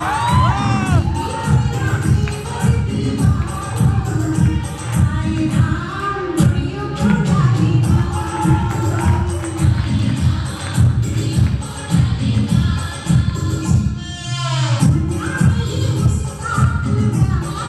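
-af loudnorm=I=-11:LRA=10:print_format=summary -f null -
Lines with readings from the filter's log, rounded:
Input Integrated:    -17.4 LUFS
Input True Peak:      -2.5 dBTP
Input LRA:             1.2 LU
Input Threshold:     -27.4 LUFS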